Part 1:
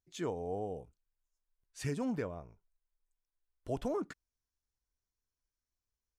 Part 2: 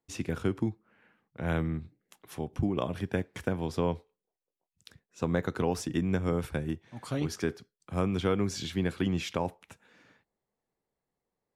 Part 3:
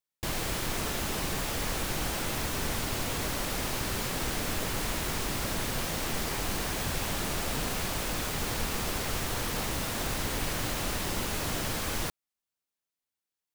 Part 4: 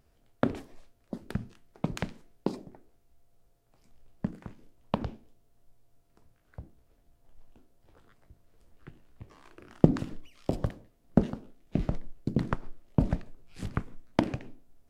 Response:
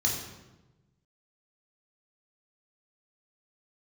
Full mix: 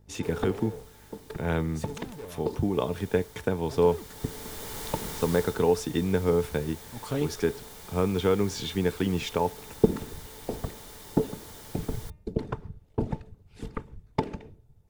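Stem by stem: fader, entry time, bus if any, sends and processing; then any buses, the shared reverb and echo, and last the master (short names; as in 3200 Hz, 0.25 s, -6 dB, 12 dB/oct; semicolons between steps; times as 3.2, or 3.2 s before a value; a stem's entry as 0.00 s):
-19.5 dB, 0.00 s, no send, tone controls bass +5 dB, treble +9 dB; hum 50 Hz, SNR 15 dB; sample leveller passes 5
+1.5 dB, 0.00 s, no send, dry
3.48 s -19 dB -> 4.26 s -8 dB -> 5.35 s -8 dB -> 5.64 s -16.5 dB, 0.00 s, no send, high shelf 6100 Hz +7 dB; notch 2600 Hz, Q 9.9; de-hum 303.3 Hz, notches 9; auto duck -7 dB, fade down 0.55 s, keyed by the first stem
-3.5 dB, 0.00 s, no send, whisperiser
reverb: off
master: small resonant body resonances 440/880/3600 Hz, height 12 dB, ringing for 95 ms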